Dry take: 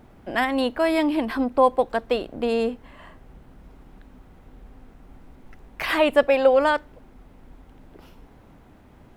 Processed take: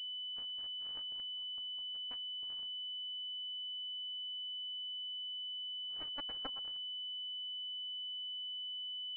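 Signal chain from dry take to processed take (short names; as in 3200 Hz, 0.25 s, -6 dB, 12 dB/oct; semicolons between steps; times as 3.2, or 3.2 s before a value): spectral gate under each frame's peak -20 dB weak; power-law curve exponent 3; pulse-width modulation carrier 3000 Hz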